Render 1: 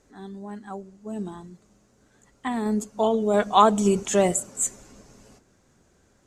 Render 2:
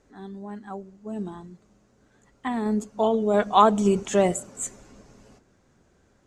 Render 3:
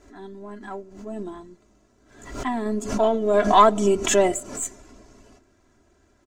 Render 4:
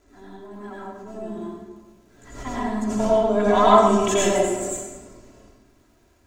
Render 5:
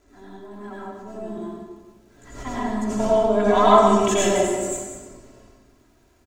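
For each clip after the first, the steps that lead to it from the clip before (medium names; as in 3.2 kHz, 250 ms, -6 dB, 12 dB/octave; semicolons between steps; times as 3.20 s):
treble shelf 6.8 kHz -11.5 dB
partial rectifier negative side -3 dB; comb 3 ms, depth 68%; swell ahead of each attack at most 83 dB/s; trim +1 dB
crackle 150 per s -49 dBFS; reverberation RT60 1.3 s, pre-delay 81 ms, DRR -6.5 dB; trim -7 dB
delay 185 ms -10.5 dB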